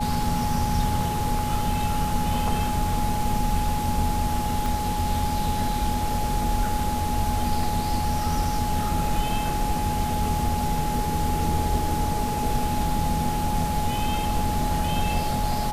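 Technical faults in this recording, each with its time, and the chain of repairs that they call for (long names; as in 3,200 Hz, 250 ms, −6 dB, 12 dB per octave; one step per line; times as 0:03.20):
whistle 840 Hz −27 dBFS
0:04.66: click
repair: click removal
notch filter 840 Hz, Q 30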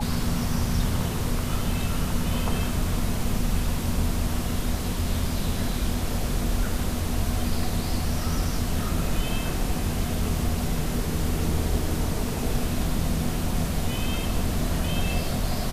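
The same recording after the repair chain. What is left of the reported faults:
0:04.66: click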